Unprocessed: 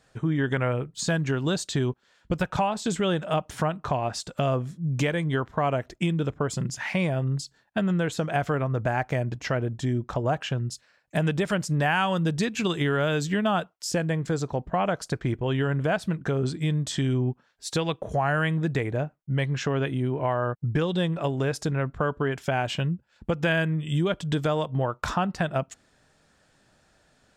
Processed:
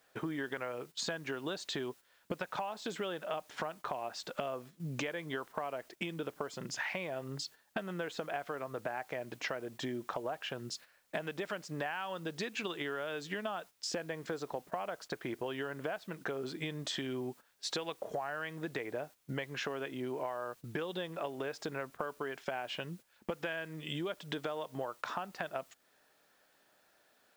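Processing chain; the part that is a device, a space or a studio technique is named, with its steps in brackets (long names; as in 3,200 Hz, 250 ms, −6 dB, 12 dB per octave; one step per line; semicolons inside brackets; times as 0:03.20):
baby monitor (band-pass filter 370–4,500 Hz; downward compressor 10 to 1, threshold −40 dBFS, peak gain reduction 20 dB; white noise bed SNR 25 dB; noise gate −55 dBFS, range −10 dB)
level +5 dB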